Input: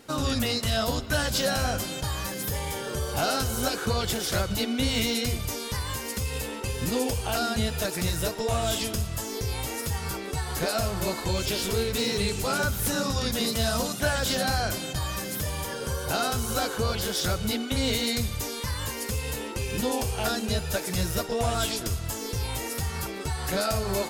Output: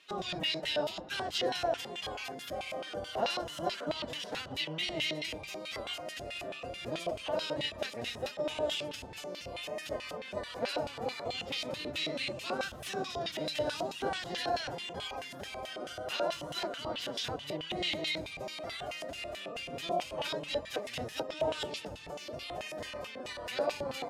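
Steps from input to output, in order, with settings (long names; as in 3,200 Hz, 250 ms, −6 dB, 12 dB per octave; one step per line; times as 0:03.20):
sub-octave generator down 1 octave, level +2 dB
phase-vocoder pitch shift with formants kept +5 semitones
auto-filter band-pass square 4.6 Hz 620–2,800 Hz
level +1.5 dB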